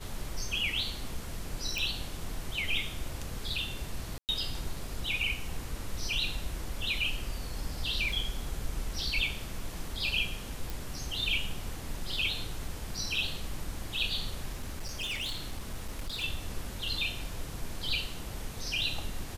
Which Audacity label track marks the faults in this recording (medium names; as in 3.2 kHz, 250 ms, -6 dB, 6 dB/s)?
1.780000	1.780000	pop
4.180000	4.290000	dropout 108 ms
8.120000	8.120000	dropout 2.9 ms
10.700000	10.700000	pop
14.530000	16.240000	clipped -31.5 dBFS